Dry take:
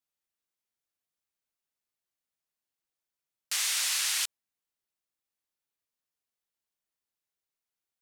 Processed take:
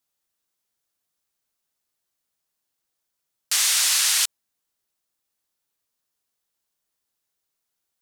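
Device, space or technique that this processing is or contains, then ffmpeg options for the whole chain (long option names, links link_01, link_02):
exciter from parts: -filter_complex "[0:a]asplit=2[link_01][link_02];[link_02]highpass=frequency=2100:width=0.5412,highpass=frequency=2100:width=1.3066,asoftclip=type=tanh:threshold=-25dB,volume=-10dB[link_03];[link_01][link_03]amix=inputs=2:normalize=0,volume=8dB"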